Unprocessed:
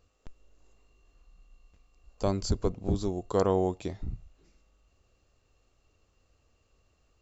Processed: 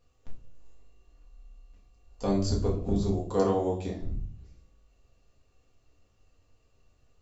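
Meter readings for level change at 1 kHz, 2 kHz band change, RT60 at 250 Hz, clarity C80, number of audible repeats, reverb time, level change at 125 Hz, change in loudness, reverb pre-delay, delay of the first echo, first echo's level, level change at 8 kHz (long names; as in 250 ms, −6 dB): 0.0 dB, −0.5 dB, 0.80 s, 13.0 dB, no echo audible, 0.55 s, +2.0 dB, +1.0 dB, 4 ms, no echo audible, no echo audible, can't be measured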